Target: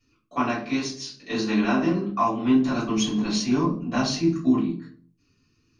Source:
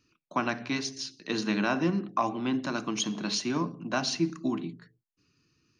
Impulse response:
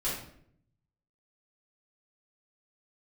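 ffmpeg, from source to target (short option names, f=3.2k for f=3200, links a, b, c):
-filter_complex "[0:a]asettb=1/sr,asplit=3[a][b][c];[a]atrim=end=2.474[d];[b]atrim=start=2.47:end=4.72,asetpts=PTS-STARTPTS,afade=t=in:d=0.004:c=qsin,afade=t=out:st=2.246:d=0.004:c=qsin,lowshelf=f=140:g=9[e];[c]atrim=start=4.716[f];[d][e]acrossfade=d=0.004:c1=hsin:c2=qsin[g];[g][f]acrossfade=d=0.004:c1=qsin:c2=hsin[h];[1:a]atrim=start_sample=2205,asetrate=83790,aresample=44100[i];[h][i]afir=irnorm=-1:irlink=0,volume=1.5dB"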